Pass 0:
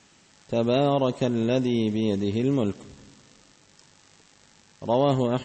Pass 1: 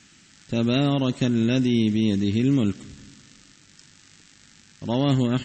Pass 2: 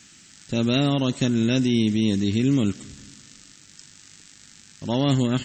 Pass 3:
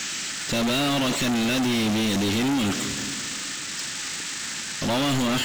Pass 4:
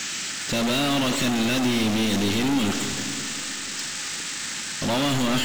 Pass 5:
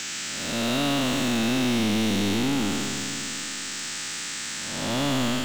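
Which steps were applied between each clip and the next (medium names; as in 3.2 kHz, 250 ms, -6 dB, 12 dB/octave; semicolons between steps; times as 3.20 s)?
high-order bell 660 Hz -11 dB; trim +4.5 dB
treble shelf 6.1 kHz +11 dB
overdrive pedal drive 41 dB, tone 4.9 kHz, clips at -8 dBFS; trim -8.5 dB
Schroeder reverb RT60 3.3 s, combs from 32 ms, DRR 9.5 dB
spectral blur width 289 ms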